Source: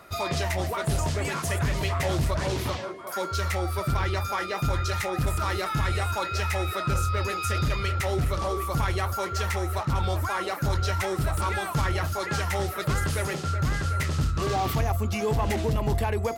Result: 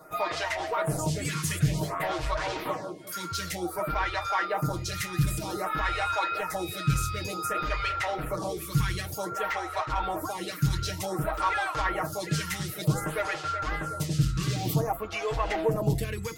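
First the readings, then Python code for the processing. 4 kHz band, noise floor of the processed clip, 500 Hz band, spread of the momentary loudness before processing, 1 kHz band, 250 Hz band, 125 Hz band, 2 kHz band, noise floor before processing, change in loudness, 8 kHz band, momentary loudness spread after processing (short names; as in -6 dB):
-1.5 dB, -38 dBFS, -2.5 dB, 2 LU, -0.5 dB, -0.5 dB, -4.0 dB, -1.0 dB, -34 dBFS, -2.0 dB, -0.5 dB, 5 LU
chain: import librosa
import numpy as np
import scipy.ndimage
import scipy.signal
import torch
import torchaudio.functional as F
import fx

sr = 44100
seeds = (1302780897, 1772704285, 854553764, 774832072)

y = x + 0.88 * np.pad(x, (int(6.4 * sr / 1000.0), 0))[:len(x)]
y = fx.stagger_phaser(y, sr, hz=0.54)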